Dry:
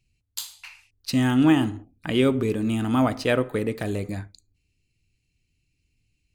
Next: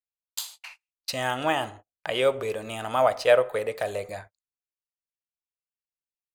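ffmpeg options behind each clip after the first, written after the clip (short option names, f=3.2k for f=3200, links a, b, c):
-af "lowshelf=f=400:t=q:w=3:g=-12.5,agate=range=-33dB:threshold=-44dB:ratio=16:detection=peak"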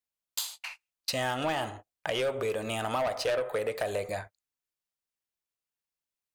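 -af "asoftclip=type=tanh:threshold=-21dB,acompressor=threshold=-30dB:ratio=6,volume=3dB"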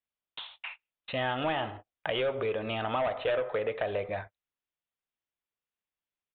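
-af "aresample=8000,aresample=44100"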